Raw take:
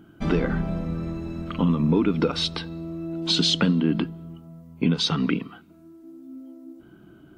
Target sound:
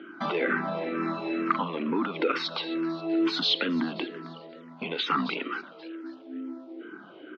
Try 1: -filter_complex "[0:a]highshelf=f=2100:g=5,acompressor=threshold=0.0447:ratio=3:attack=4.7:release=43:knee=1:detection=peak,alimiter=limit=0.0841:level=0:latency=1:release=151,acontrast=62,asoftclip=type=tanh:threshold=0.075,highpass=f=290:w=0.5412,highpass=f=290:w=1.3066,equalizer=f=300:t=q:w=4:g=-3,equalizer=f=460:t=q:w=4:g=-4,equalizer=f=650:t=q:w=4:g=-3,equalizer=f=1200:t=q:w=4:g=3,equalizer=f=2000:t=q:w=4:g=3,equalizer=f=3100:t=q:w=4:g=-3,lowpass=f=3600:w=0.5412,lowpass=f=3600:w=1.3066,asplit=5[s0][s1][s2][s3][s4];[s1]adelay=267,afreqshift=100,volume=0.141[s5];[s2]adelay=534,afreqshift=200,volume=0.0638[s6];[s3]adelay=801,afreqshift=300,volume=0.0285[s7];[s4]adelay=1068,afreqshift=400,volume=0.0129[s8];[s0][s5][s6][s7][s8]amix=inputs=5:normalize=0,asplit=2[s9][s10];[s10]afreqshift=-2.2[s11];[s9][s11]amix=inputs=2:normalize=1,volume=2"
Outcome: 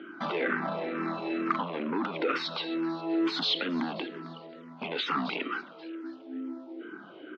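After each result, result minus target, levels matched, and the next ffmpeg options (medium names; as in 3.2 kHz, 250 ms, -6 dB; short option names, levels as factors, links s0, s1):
compression: peak gain reduction +9.5 dB; saturation: distortion +12 dB
-filter_complex "[0:a]highshelf=f=2100:g=5,alimiter=limit=0.0841:level=0:latency=1:release=151,acontrast=62,asoftclip=type=tanh:threshold=0.075,highpass=f=290:w=0.5412,highpass=f=290:w=1.3066,equalizer=f=300:t=q:w=4:g=-3,equalizer=f=460:t=q:w=4:g=-4,equalizer=f=650:t=q:w=4:g=-3,equalizer=f=1200:t=q:w=4:g=3,equalizer=f=2000:t=q:w=4:g=3,equalizer=f=3100:t=q:w=4:g=-3,lowpass=f=3600:w=0.5412,lowpass=f=3600:w=1.3066,asplit=5[s0][s1][s2][s3][s4];[s1]adelay=267,afreqshift=100,volume=0.141[s5];[s2]adelay=534,afreqshift=200,volume=0.0638[s6];[s3]adelay=801,afreqshift=300,volume=0.0285[s7];[s4]adelay=1068,afreqshift=400,volume=0.0129[s8];[s0][s5][s6][s7][s8]amix=inputs=5:normalize=0,asplit=2[s9][s10];[s10]afreqshift=-2.2[s11];[s9][s11]amix=inputs=2:normalize=1,volume=2"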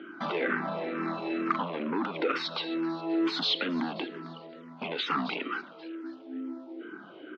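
saturation: distortion +13 dB
-filter_complex "[0:a]highshelf=f=2100:g=5,alimiter=limit=0.0841:level=0:latency=1:release=151,acontrast=62,asoftclip=type=tanh:threshold=0.211,highpass=f=290:w=0.5412,highpass=f=290:w=1.3066,equalizer=f=300:t=q:w=4:g=-3,equalizer=f=460:t=q:w=4:g=-4,equalizer=f=650:t=q:w=4:g=-3,equalizer=f=1200:t=q:w=4:g=3,equalizer=f=2000:t=q:w=4:g=3,equalizer=f=3100:t=q:w=4:g=-3,lowpass=f=3600:w=0.5412,lowpass=f=3600:w=1.3066,asplit=5[s0][s1][s2][s3][s4];[s1]adelay=267,afreqshift=100,volume=0.141[s5];[s2]adelay=534,afreqshift=200,volume=0.0638[s6];[s3]adelay=801,afreqshift=300,volume=0.0285[s7];[s4]adelay=1068,afreqshift=400,volume=0.0129[s8];[s0][s5][s6][s7][s8]amix=inputs=5:normalize=0,asplit=2[s9][s10];[s10]afreqshift=-2.2[s11];[s9][s11]amix=inputs=2:normalize=1,volume=2"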